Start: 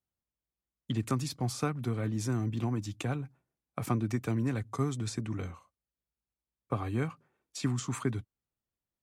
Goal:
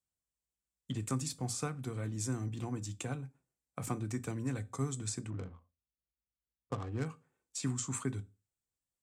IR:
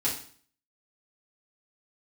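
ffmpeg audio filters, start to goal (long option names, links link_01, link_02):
-filter_complex "[0:a]asplit=2[link_01][link_02];[1:a]atrim=start_sample=2205,asetrate=79380,aresample=44100,lowshelf=frequency=160:gain=11[link_03];[link_02][link_03]afir=irnorm=-1:irlink=0,volume=-13dB[link_04];[link_01][link_04]amix=inputs=2:normalize=0,asettb=1/sr,asplit=3[link_05][link_06][link_07];[link_05]atrim=end=5.304[link_08];[link_06]atrim=start=5.3:end=7.06,asetpts=PTS-STARTPTS,afade=type=in:duration=0.004:curve=qsin,afade=type=out:start_time=1.756:duration=0.004:curve=qsin,adynamicsmooth=sensitivity=7:basefreq=510[link_09];[link_07]atrim=start=7.056[link_10];[link_08][link_09]acrossfade=duration=0.004:curve1=hsin:curve2=qsin[link_11];[link_11][link_10]acrossfade=duration=0.004:curve1=qsin:curve2=hsin,equalizer=frequency=7800:width=1.7:gain=12,volume=-7dB"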